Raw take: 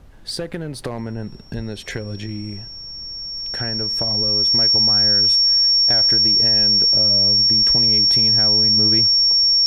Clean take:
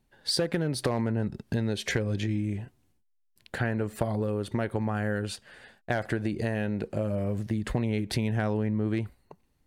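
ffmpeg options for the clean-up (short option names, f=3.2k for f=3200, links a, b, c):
-filter_complex "[0:a]bandreject=f=5.5k:w=30,asplit=3[a][b][c];[a]afade=t=out:st=1.55:d=0.02[d];[b]highpass=f=140:w=0.5412,highpass=f=140:w=1.3066,afade=t=in:st=1.55:d=0.02,afade=t=out:st=1.67:d=0.02[e];[c]afade=t=in:st=1.67:d=0.02[f];[d][e][f]amix=inputs=3:normalize=0,agate=range=-21dB:threshold=-26dB,asetnsamples=n=441:p=0,asendcmd='8.77 volume volume -3.5dB',volume=0dB"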